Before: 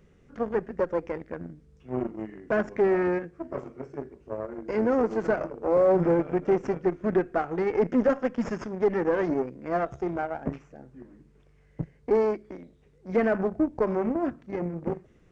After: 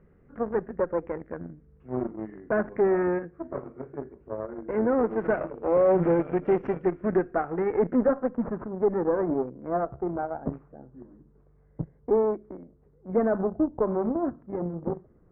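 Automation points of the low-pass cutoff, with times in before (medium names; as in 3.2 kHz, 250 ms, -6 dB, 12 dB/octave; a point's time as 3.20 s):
low-pass 24 dB/octave
4.88 s 1.8 kHz
5.68 s 2.9 kHz
6.74 s 2.9 kHz
7.22 s 1.9 kHz
7.75 s 1.9 kHz
8.32 s 1.3 kHz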